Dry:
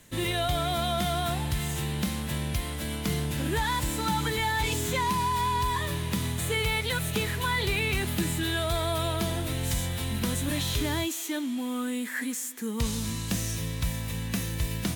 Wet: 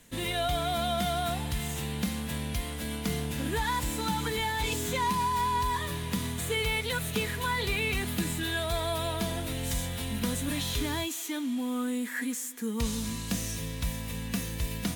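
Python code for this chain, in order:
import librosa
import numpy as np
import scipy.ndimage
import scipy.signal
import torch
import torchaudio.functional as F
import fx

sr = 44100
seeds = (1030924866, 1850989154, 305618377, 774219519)

y = x + 0.37 * np.pad(x, (int(4.2 * sr / 1000.0), 0))[:len(x)]
y = F.gain(torch.from_numpy(y), -2.5).numpy()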